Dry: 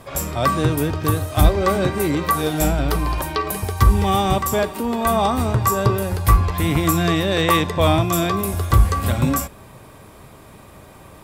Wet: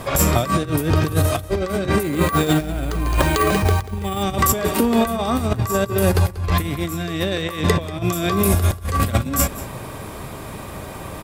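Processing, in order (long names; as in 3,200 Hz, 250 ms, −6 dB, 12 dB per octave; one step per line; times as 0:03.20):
dynamic equaliser 900 Hz, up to −7 dB, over −36 dBFS, Q 2.8
compressor whose output falls as the input rises −24 dBFS, ratio −0.5
single-tap delay 188 ms −17 dB
0:02.03–0:04.23: bad sample-rate conversion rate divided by 4×, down filtered, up hold
level +5 dB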